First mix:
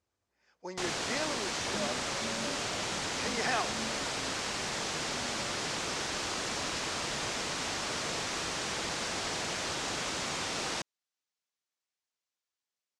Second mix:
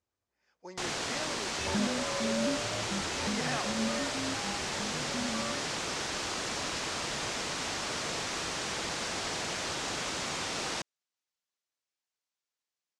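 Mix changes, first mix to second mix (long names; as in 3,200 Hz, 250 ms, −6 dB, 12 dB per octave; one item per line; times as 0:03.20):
speech −4.5 dB
second sound +10.5 dB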